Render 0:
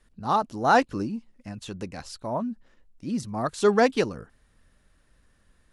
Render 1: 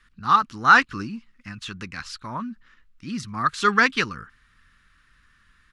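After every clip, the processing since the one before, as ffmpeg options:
ffmpeg -i in.wav -af "firequalizer=gain_entry='entry(160,0);entry(640,-14);entry(1200,12);entry(9100,-3)':delay=0.05:min_phase=1" out.wav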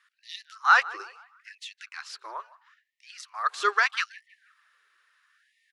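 ffmpeg -i in.wav -filter_complex "[0:a]asplit=2[link_01][link_02];[link_02]adelay=160,lowpass=frequency=2000:poles=1,volume=-18dB,asplit=2[link_03][link_04];[link_04]adelay=160,lowpass=frequency=2000:poles=1,volume=0.51,asplit=2[link_05][link_06];[link_06]adelay=160,lowpass=frequency=2000:poles=1,volume=0.51,asplit=2[link_07][link_08];[link_08]adelay=160,lowpass=frequency=2000:poles=1,volume=0.51[link_09];[link_01][link_03][link_05][link_07][link_09]amix=inputs=5:normalize=0,afftfilt=real='re*gte(b*sr/1024,340*pow(1800/340,0.5+0.5*sin(2*PI*0.76*pts/sr)))':imag='im*gte(b*sr/1024,340*pow(1800/340,0.5+0.5*sin(2*PI*0.76*pts/sr)))':win_size=1024:overlap=0.75,volume=-4.5dB" out.wav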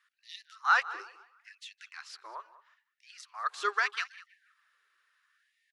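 ffmpeg -i in.wav -filter_complex "[0:a]asplit=2[link_01][link_02];[link_02]adelay=198.3,volume=-18dB,highshelf=frequency=4000:gain=-4.46[link_03];[link_01][link_03]amix=inputs=2:normalize=0,volume=-6dB" out.wav

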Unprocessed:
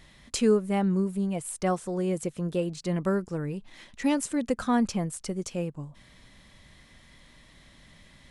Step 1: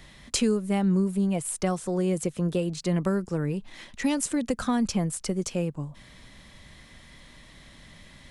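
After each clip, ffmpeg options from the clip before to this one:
ffmpeg -i in.wav -filter_complex "[0:a]acrossover=split=180|3000[link_01][link_02][link_03];[link_02]acompressor=threshold=-29dB:ratio=6[link_04];[link_01][link_04][link_03]amix=inputs=3:normalize=0,volume=4.5dB" out.wav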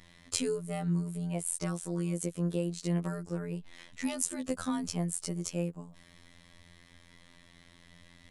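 ffmpeg -i in.wav -af "afftfilt=real='hypot(re,im)*cos(PI*b)':imag='0':win_size=2048:overlap=0.75,adynamicequalizer=threshold=0.00282:dfrequency=6500:dqfactor=0.7:tfrequency=6500:tqfactor=0.7:attack=5:release=100:ratio=0.375:range=3.5:mode=boostabove:tftype=highshelf,volume=-4dB" out.wav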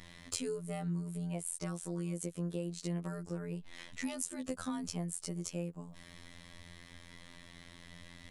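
ffmpeg -i in.wav -af "acompressor=threshold=-46dB:ratio=2,volume=4dB" out.wav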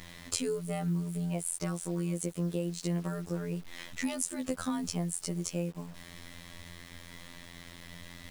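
ffmpeg -i in.wav -af "acrusher=bits=9:mix=0:aa=0.000001,volume=5dB" out.wav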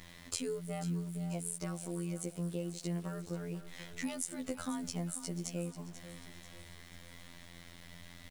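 ffmpeg -i in.wav -af "aecho=1:1:489|978|1467|1956|2445:0.224|0.107|0.0516|0.0248|0.0119,volume=-5dB" out.wav

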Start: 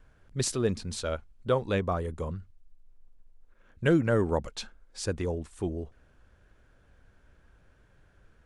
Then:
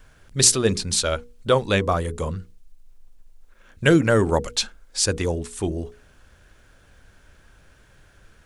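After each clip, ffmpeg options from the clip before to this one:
ffmpeg -i in.wav -af "highshelf=frequency=2500:gain=11,bandreject=frequency=60:width_type=h:width=6,bandreject=frequency=120:width_type=h:width=6,bandreject=frequency=180:width_type=h:width=6,bandreject=frequency=240:width_type=h:width=6,bandreject=frequency=300:width_type=h:width=6,bandreject=frequency=360:width_type=h:width=6,bandreject=frequency=420:width_type=h:width=6,bandreject=frequency=480:width_type=h:width=6,volume=7dB" out.wav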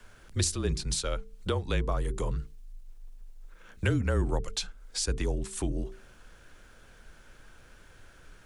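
ffmpeg -i in.wav -filter_complex "[0:a]acrossover=split=130[link_01][link_02];[link_02]acompressor=threshold=-33dB:ratio=3[link_03];[link_01][link_03]amix=inputs=2:normalize=0,afreqshift=-36" out.wav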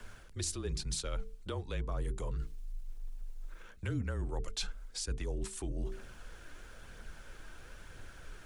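ffmpeg -i in.wav -af "areverse,acompressor=threshold=-37dB:ratio=6,areverse,aphaser=in_gain=1:out_gain=1:delay=3.4:decay=0.28:speed=1:type=triangular,volume=2dB" out.wav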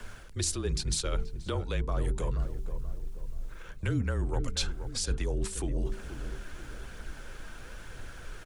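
ffmpeg -i in.wav -filter_complex "[0:a]asplit=2[link_01][link_02];[link_02]adelay=480,lowpass=frequency=1100:poles=1,volume=-9.5dB,asplit=2[link_03][link_04];[link_04]adelay=480,lowpass=frequency=1100:poles=1,volume=0.47,asplit=2[link_05][link_06];[link_06]adelay=480,lowpass=frequency=1100:poles=1,volume=0.47,asplit=2[link_07][link_08];[link_08]adelay=480,lowpass=frequency=1100:poles=1,volume=0.47,asplit=2[link_09][link_10];[link_10]adelay=480,lowpass=frequency=1100:poles=1,volume=0.47[link_11];[link_01][link_03][link_05][link_07][link_09][link_11]amix=inputs=6:normalize=0,volume=6dB" out.wav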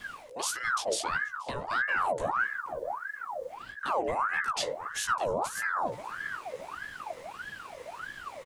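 ffmpeg -i in.wav -filter_complex "[0:a]asplit=2[link_01][link_02];[link_02]adelay=16,volume=-3.5dB[link_03];[link_01][link_03]amix=inputs=2:normalize=0,aeval=exprs='val(0)*sin(2*PI*1100*n/s+1100*0.55/1.6*sin(2*PI*1.6*n/s))':channel_layout=same" out.wav

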